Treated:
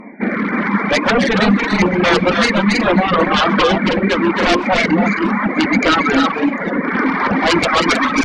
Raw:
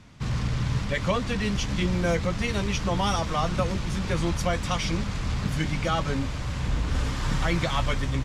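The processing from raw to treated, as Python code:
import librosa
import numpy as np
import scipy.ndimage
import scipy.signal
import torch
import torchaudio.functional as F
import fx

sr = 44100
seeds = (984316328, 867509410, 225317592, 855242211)

y = fx.brickwall_bandpass(x, sr, low_hz=190.0, high_hz=2400.0)
y = fx.filter_lfo_notch(y, sr, shape='saw_down', hz=1.1, low_hz=380.0, high_hz=1600.0, q=1.2)
y = fx.fold_sine(y, sr, drive_db=11, ceiling_db=-17.5)
y = fx.echo_multitap(y, sr, ms=(128, 272, 317, 555, 761), db=(-12.0, -4.0, -4.5, -19.0, -18.0))
y = fx.dereverb_blind(y, sr, rt60_s=1.7)
y = fx.record_warp(y, sr, rpm=33.33, depth_cents=100.0)
y = F.gain(torch.from_numpy(y), 8.0).numpy()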